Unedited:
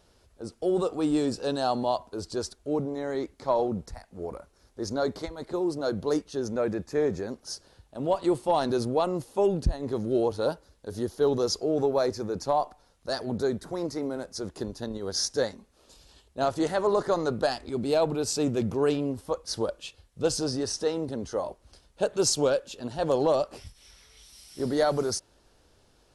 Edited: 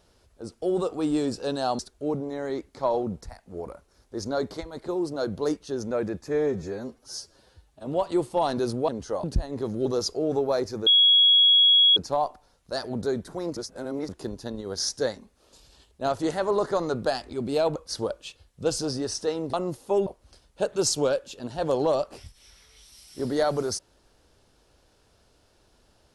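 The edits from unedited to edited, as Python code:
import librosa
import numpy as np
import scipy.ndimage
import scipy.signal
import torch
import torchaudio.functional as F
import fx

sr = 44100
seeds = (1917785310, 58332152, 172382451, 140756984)

y = fx.edit(x, sr, fx.cut(start_s=1.79, length_s=0.65),
    fx.stretch_span(start_s=6.93, length_s=1.05, factor=1.5),
    fx.swap(start_s=9.01, length_s=0.53, other_s=21.12, other_length_s=0.35),
    fx.cut(start_s=10.16, length_s=1.16),
    fx.insert_tone(at_s=12.33, length_s=1.1, hz=3330.0, db=-14.0),
    fx.reverse_span(start_s=13.93, length_s=0.52),
    fx.cut(start_s=18.12, length_s=1.22), tone=tone)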